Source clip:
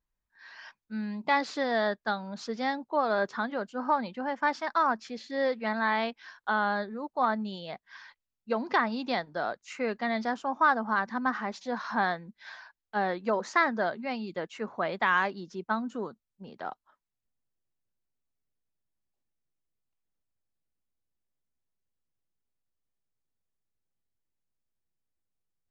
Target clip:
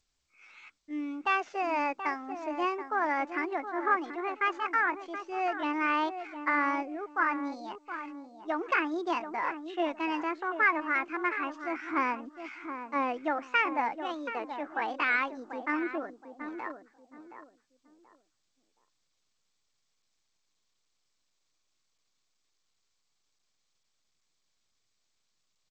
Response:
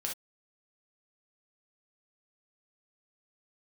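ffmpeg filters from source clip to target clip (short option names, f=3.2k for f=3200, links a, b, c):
-filter_complex "[0:a]aphaser=in_gain=1:out_gain=1:delay=4.1:decay=0.31:speed=0.16:type=sinusoidal,asplit=2[a][b];[b]adelay=722,lowpass=f=920:p=1,volume=-8dB,asplit=2[c][d];[d]adelay=722,lowpass=f=920:p=1,volume=0.29,asplit=2[e][f];[f]adelay=722,lowpass=f=920:p=1,volume=0.29[g];[c][e][g]amix=inputs=3:normalize=0[h];[a][h]amix=inputs=2:normalize=0,asetrate=60591,aresample=44100,atempo=0.727827,lowpass=2.7k,volume=-1.5dB" -ar 16000 -c:a g722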